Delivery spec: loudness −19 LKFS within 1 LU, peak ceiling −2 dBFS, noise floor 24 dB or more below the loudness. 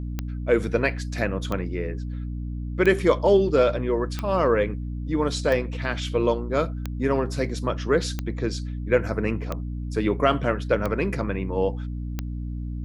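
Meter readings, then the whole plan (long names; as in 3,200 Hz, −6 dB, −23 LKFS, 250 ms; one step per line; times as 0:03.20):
number of clicks 10; mains hum 60 Hz; hum harmonics up to 300 Hz; level of the hum −28 dBFS; integrated loudness −25.0 LKFS; sample peak −5.5 dBFS; target loudness −19.0 LKFS
→ click removal
mains-hum notches 60/120/180/240/300 Hz
level +6 dB
brickwall limiter −2 dBFS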